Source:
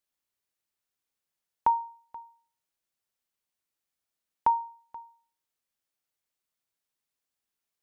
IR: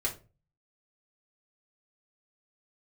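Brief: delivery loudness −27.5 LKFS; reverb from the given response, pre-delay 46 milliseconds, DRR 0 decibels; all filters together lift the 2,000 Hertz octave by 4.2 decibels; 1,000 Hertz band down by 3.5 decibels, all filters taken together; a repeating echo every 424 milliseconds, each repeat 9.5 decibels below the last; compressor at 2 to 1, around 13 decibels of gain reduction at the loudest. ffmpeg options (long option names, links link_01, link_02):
-filter_complex "[0:a]equalizer=frequency=1000:width_type=o:gain=-5,equalizer=frequency=2000:width_type=o:gain=7.5,acompressor=threshold=-47dB:ratio=2,aecho=1:1:424|848|1272|1696:0.335|0.111|0.0365|0.012,asplit=2[link_01][link_02];[1:a]atrim=start_sample=2205,adelay=46[link_03];[link_02][link_03]afir=irnorm=-1:irlink=0,volume=-5dB[link_04];[link_01][link_04]amix=inputs=2:normalize=0,volume=16.5dB"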